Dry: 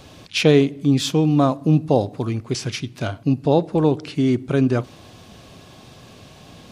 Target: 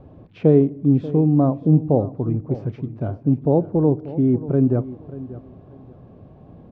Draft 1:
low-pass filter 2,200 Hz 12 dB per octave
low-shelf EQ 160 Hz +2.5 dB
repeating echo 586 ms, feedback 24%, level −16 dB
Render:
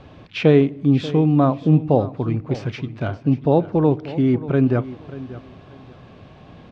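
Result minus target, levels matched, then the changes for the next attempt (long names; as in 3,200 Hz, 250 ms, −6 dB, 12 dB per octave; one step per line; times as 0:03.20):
2,000 Hz band +16.5 dB
change: low-pass filter 640 Hz 12 dB per octave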